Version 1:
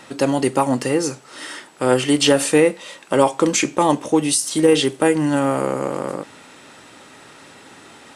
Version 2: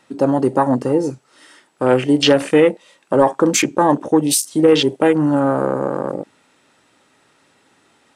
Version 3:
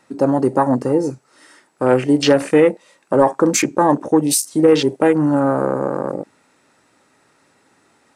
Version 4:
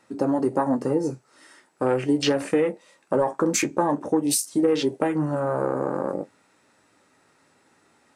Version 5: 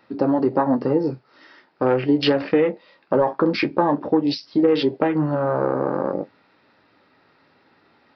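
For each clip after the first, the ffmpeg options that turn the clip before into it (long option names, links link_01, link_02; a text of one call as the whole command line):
ffmpeg -i in.wav -af "acontrast=20,afwtdn=0.0891,volume=-1.5dB" out.wav
ffmpeg -i in.wav -af "equalizer=frequency=3200:width_type=o:width=0.52:gain=-7.5" out.wav
ffmpeg -i in.wav -af "acompressor=threshold=-14dB:ratio=5,flanger=delay=9.2:depth=3.8:regen=-49:speed=0.45:shape=triangular" out.wav
ffmpeg -i in.wav -af "aresample=11025,aresample=44100,volume=3.5dB" out.wav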